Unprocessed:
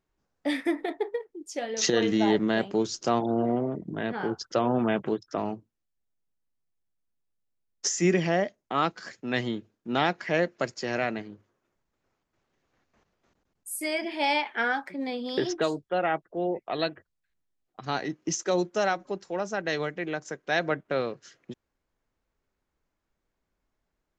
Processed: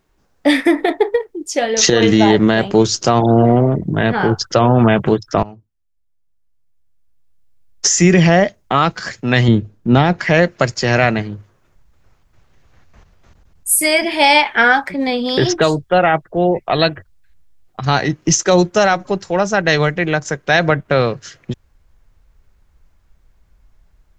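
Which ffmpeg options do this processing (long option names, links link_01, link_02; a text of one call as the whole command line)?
ffmpeg -i in.wav -filter_complex "[0:a]asettb=1/sr,asplit=3[link_01][link_02][link_03];[link_01]atrim=end=9.484[link_04];[link_02]atrim=start=9.48:end=10.19,asetpts=PTS-STARTPTS,afade=type=in:duration=0.004:curve=qsin,afade=type=out:start_time=0.706:duration=0.004:curve=qsin,tiltshelf=frequency=740:gain=5.5[link_05];[link_03]atrim=start=10.186[link_06];[link_04][link_05]acrossfade=duration=0.004:curve1=hsin:curve2=qsin[link_07];[link_07][link_06]acrossfade=duration=0.004:curve1=qsin:curve2=hsin,asettb=1/sr,asplit=3[link_08][link_09][link_10];[link_08]atrim=end=13.694[link_11];[link_09]atrim=start=13.69:end=14.45,asetpts=PTS-STARTPTS,afade=type=in:duration=0.004:curve=qsin,afade=type=out:start_time=0.756:duration=0.004:curve=qsin,equalizer=frequency=9700:width_type=o:width=0.98:gain=7[link_12];[link_10]atrim=start=14.446[link_13];[link_11][link_12]acrossfade=duration=0.004:curve1=hsin:curve2=qsin[link_14];[link_14][link_13]acrossfade=duration=0.004:curve1=qsin:curve2=hsin,asplit=2[link_15][link_16];[link_15]atrim=end=5.43,asetpts=PTS-STARTPTS,afade=type=out:start_time=5.426:duration=0.004:curve=hsin:silence=0.112202[link_17];[link_16]atrim=start=5.43,asetpts=PTS-STARTPTS,afade=type=in:duration=2.55:curve=qua:silence=0.112202[link_18];[link_17][link_18]concat=n=2:v=0:a=1,asubboost=boost=6:cutoff=110,alimiter=level_in=17dB:limit=-1dB:release=50:level=0:latency=1,volume=-1dB" out.wav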